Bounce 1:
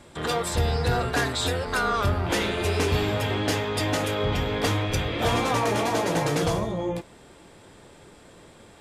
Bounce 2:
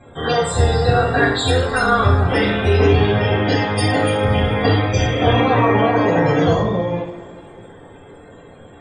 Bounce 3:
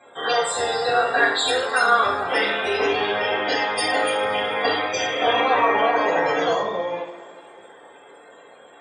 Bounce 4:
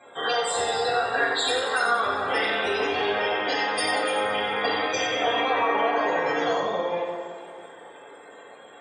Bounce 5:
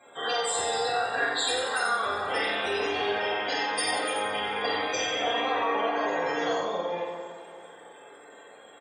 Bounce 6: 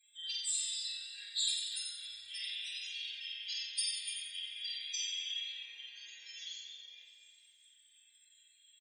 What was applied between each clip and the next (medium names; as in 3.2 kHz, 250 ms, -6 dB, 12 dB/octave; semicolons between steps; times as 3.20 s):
loudest bins only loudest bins 64; two-slope reverb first 0.49 s, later 3 s, from -21 dB, DRR -8.5 dB
high-pass 580 Hz 12 dB/octave
compression 2:1, threshold -25 dBFS, peak gain reduction 7.5 dB; two-band feedback delay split 1.2 kHz, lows 169 ms, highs 91 ms, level -7.5 dB
treble shelf 7.2 kHz +9.5 dB; doubling 47 ms -6 dB; trim -5 dB
inverse Chebyshev band-stop 110–1300 Hz, stop band 50 dB; speakerphone echo 250 ms, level -7 dB; trim -3.5 dB